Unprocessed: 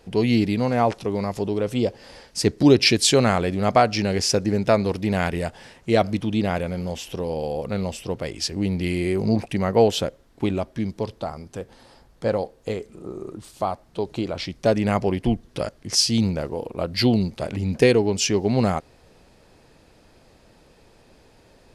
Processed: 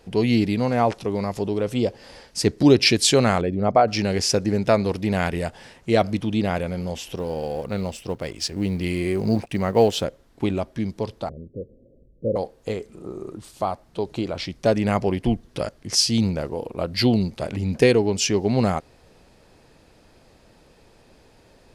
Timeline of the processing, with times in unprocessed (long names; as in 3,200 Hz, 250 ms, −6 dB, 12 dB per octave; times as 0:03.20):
0:03.41–0:03.88: spectral envelope exaggerated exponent 1.5
0:07.16–0:10.04: mu-law and A-law mismatch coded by A
0:11.29–0:12.36: Butterworth low-pass 570 Hz 72 dB per octave